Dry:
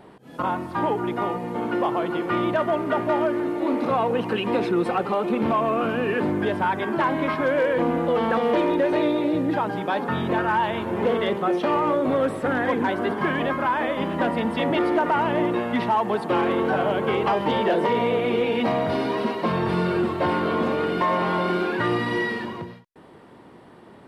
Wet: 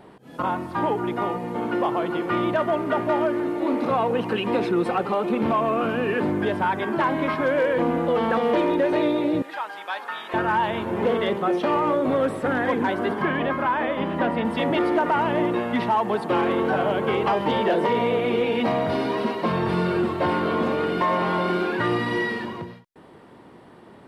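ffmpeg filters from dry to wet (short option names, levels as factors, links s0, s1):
-filter_complex "[0:a]asettb=1/sr,asplit=3[s0][s1][s2];[s0]atrim=end=9.424[s3];[s1]atrim=start=9.42:end=10.34,asetpts=PTS-STARTPTS,afade=t=in:d=0.004:c=qsin,afade=t=out:st=0.916:d=0.004:c=qsin,highpass=1100[s4];[s2]atrim=start=10.336[s5];[s3][s4]acrossfade=d=0.004:c1=hsin:c2=qsin[s6];[s6][s5]acrossfade=d=0.004:c1=qsin:c2=hsin,asettb=1/sr,asplit=3[s7][s8][s9];[s7]atrim=end=13.224[s10];[s8]atrim=start=13.22:end=14.45,asetpts=PTS-STARTPTS,afade=t=in:d=0.004:c=qsin,afade=t=out:st=1.226:d=0.004:c=qsin,acrossover=split=4100[s11][s12];[s12]acompressor=threshold=0.001:ratio=4:attack=1:release=60[s13];[s11][s13]amix=inputs=2:normalize=0[s14];[s9]atrim=start=14.446[s15];[s10][s14]acrossfade=d=0.004:c1=hsin:c2=qsin[s16];[s16][s15]acrossfade=d=0.004:c1=qsin:c2=hsin"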